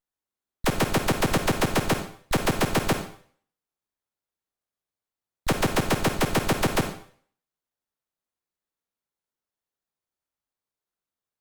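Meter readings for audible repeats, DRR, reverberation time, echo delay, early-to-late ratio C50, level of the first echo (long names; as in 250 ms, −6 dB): no echo audible, 6.5 dB, 0.50 s, no echo audible, 8.0 dB, no echo audible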